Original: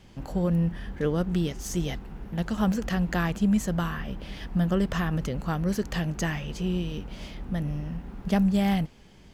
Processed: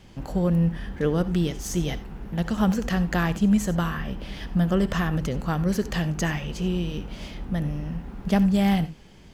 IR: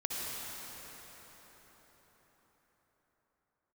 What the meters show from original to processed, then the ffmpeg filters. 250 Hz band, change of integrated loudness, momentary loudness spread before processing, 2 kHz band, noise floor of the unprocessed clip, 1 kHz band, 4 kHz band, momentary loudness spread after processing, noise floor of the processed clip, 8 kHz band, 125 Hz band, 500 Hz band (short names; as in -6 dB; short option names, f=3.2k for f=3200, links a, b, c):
+3.0 dB, +3.0 dB, 11 LU, +3.0 dB, -51 dBFS, +3.0 dB, +3.0 dB, 12 LU, -48 dBFS, +3.0 dB, +3.0 dB, +3.0 dB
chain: -filter_complex "[0:a]asplit=2[a][b];[1:a]atrim=start_sample=2205,atrim=end_sample=4410[c];[b][c]afir=irnorm=-1:irlink=0,volume=-7dB[d];[a][d]amix=inputs=2:normalize=0"